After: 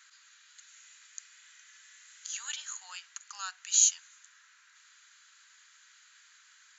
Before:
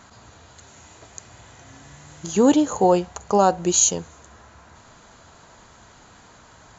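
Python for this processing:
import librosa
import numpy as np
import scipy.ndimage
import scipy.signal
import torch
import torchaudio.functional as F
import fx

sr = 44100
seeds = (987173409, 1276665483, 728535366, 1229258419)

y = scipy.signal.sosfilt(scipy.signal.butter(6, 1500.0, 'highpass', fs=sr, output='sos'), x)
y = F.gain(torch.from_numpy(y), -5.0).numpy()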